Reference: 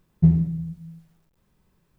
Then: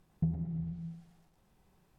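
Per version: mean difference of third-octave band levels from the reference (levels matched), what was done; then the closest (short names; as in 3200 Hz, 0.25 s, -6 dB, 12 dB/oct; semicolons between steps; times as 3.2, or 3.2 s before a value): 4.5 dB: compressor, threshold -27 dBFS, peak gain reduction 15 dB; bell 760 Hz +10 dB 0.25 oct; treble ducked by the level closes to 520 Hz, closed at -22.5 dBFS; on a send: thinning echo 0.114 s, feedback 51%, high-pass 200 Hz, level -4.5 dB; on the sum: gain -2.5 dB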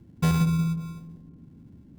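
12.0 dB: sample-and-hold 36×; soft clip -18 dBFS, distortion -8 dB; band noise 61–280 Hz -51 dBFS; on a send: dark delay 0.182 s, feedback 52%, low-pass 460 Hz, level -7 dB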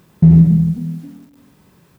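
3.0 dB: HPF 96 Hz 12 dB/oct; frequency-shifting echo 0.266 s, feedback 40%, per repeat +40 Hz, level -23 dB; maximiser +18 dB; gain -1 dB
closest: third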